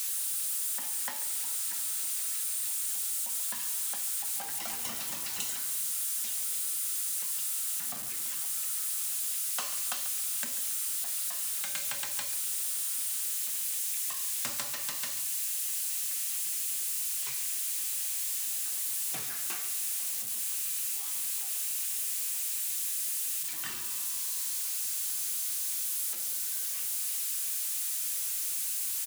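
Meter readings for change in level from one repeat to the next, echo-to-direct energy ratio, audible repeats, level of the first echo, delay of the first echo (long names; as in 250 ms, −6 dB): −8.0 dB, −13.5 dB, 2, −14.0 dB, 139 ms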